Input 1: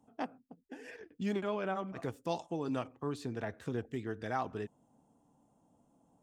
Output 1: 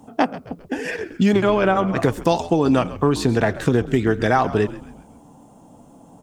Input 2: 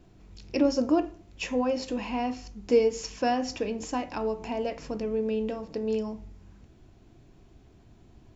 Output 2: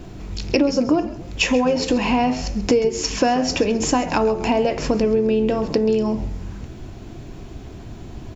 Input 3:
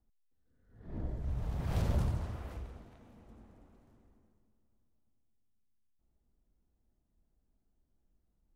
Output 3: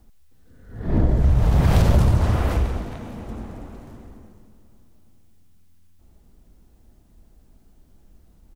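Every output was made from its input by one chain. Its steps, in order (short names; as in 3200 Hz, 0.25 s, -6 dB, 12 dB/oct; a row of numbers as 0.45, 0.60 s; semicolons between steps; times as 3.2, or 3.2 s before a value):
compressor 6:1, threshold -35 dBFS; frequency-shifting echo 0.133 s, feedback 45%, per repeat -86 Hz, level -16 dB; match loudness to -20 LUFS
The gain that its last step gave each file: +22.0, +19.0, +23.0 dB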